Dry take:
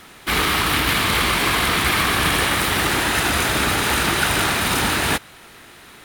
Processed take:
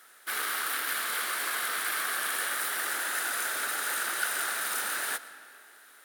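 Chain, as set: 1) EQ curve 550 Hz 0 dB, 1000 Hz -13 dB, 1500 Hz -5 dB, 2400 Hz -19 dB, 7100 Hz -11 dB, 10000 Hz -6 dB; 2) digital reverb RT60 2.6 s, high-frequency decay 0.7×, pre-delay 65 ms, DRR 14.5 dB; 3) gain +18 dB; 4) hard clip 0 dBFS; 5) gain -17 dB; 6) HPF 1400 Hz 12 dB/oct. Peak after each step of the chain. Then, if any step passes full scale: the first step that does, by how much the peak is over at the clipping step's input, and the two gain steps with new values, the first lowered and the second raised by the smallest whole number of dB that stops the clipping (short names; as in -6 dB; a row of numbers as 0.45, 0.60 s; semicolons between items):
-11.0, -11.0, +7.0, 0.0, -17.0, -15.5 dBFS; step 3, 7.0 dB; step 3 +11 dB, step 5 -10 dB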